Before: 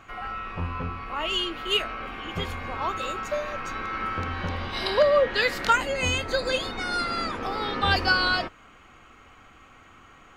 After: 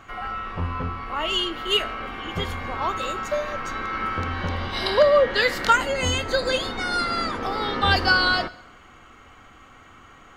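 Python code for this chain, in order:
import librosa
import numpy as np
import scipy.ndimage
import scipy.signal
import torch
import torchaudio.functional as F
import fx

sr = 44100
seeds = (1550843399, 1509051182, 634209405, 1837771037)

y = fx.notch(x, sr, hz=2500.0, q=12.0)
y = fx.rev_plate(y, sr, seeds[0], rt60_s=1.0, hf_ratio=0.75, predelay_ms=0, drr_db=17.0)
y = y * 10.0 ** (3.0 / 20.0)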